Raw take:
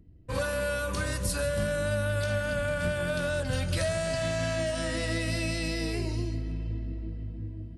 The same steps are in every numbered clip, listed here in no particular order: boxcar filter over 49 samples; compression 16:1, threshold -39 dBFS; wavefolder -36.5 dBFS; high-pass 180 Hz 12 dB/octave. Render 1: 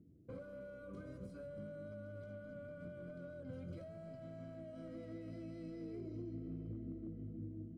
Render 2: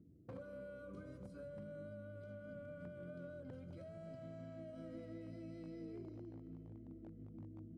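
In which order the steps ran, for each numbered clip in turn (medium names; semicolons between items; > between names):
high-pass > compression > wavefolder > boxcar filter; compression > boxcar filter > wavefolder > high-pass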